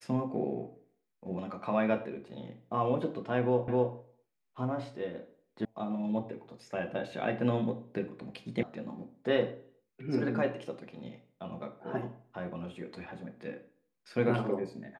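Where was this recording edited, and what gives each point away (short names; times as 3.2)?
3.68 repeat of the last 0.26 s
5.65 sound cut off
8.63 sound cut off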